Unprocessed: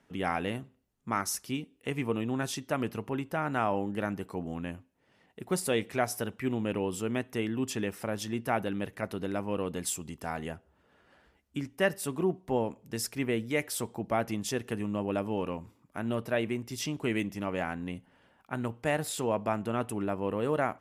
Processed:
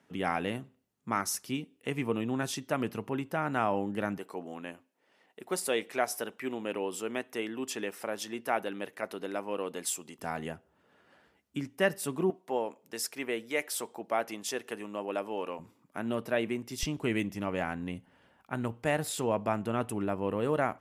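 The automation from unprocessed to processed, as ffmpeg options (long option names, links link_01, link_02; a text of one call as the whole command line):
ffmpeg -i in.wav -af "asetnsamples=nb_out_samples=441:pad=0,asendcmd='4.18 highpass f 340;10.19 highpass f 120;12.3 highpass f 400;15.59 highpass f 160;16.83 highpass f 41',highpass=110" out.wav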